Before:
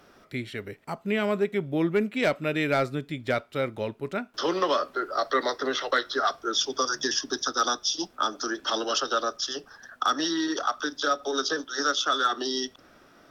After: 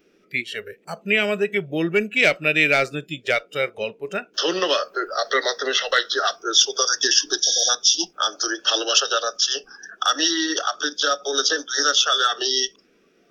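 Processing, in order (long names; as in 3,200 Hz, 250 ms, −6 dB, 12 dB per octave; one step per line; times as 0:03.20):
healed spectral selection 0:07.47–0:07.67, 790–7,000 Hz before
pitch vibrato 0.8 Hz 9.9 cents
noise in a band 180–460 Hz −47 dBFS
noise reduction from a noise print of the clip's start 16 dB
graphic EQ with 15 bands 100 Hz −10 dB, 250 Hz −7 dB, 1,000 Hz −9 dB, 2,500 Hz +11 dB, 6,300 Hz +6 dB
level +5.5 dB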